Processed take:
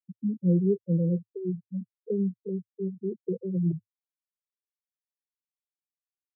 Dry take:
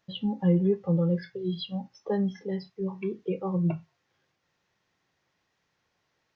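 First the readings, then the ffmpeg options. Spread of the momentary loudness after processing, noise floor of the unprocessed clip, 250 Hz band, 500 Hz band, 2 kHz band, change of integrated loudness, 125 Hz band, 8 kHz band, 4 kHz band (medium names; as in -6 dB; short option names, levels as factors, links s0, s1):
11 LU, -77 dBFS, 0.0 dB, -1.0 dB, under -40 dB, -0.5 dB, 0.0 dB, no reading, under -40 dB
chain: -af "afftfilt=real='re*gte(hypot(re,im),0.0891)':imag='im*gte(hypot(re,im),0.0891)':win_size=1024:overlap=0.75,asuperpass=centerf=230:order=20:qfactor=0.57"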